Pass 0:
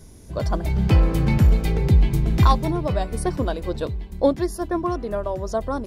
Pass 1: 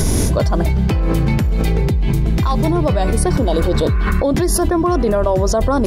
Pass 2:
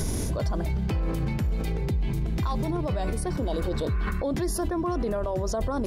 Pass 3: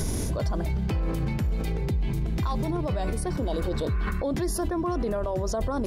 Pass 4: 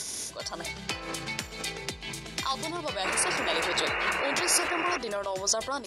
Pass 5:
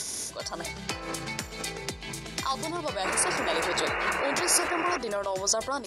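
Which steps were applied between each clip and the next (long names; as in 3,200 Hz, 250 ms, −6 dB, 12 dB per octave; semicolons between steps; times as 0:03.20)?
healed spectral selection 0:03.37–0:04.22, 1,000–2,800 Hz before; envelope flattener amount 100%; level −3.5 dB
brickwall limiter −12 dBFS, peak gain reduction 8 dB; level −8 dB
no processing that can be heard
meter weighting curve ITU-R 468; automatic gain control gain up to 10.5 dB; sound drawn into the spectrogram noise, 0:03.04–0:04.98, 310–2,900 Hz −23 dBFS; level −8 dB
dynamic equaliser 3,100 Hz, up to −6 dB, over −44 dBFS, Q 1.2; level +2 dB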